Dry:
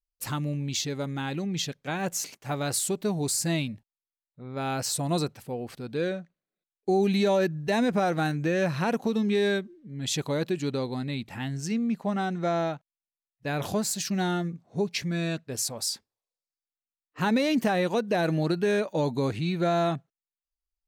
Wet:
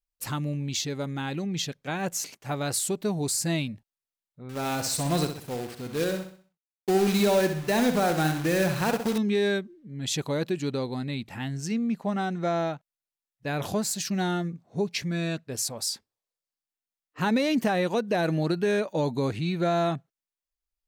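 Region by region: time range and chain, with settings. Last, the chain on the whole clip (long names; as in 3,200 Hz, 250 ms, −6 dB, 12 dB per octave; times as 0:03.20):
0:04.49–0:09.18: log-companded quantiser 4 bits + repeating echo 64 ms, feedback 40%, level −8 dB
whole clip: no processing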